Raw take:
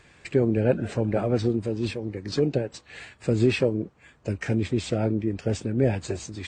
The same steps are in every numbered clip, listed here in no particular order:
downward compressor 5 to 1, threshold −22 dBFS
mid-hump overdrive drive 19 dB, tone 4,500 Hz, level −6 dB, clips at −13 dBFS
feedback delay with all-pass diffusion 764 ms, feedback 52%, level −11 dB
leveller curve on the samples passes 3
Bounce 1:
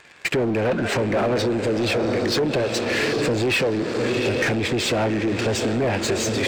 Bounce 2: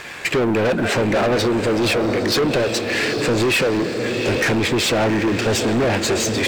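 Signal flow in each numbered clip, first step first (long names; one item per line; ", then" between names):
feedback delay with all-pass diffusion, then leveller curve on the samples, then downward compressor, then mid-hump overdrive
downward compressor, then feedback delay with all-pass diffusion, then mid-hump overdrive, then leveller curve on the samples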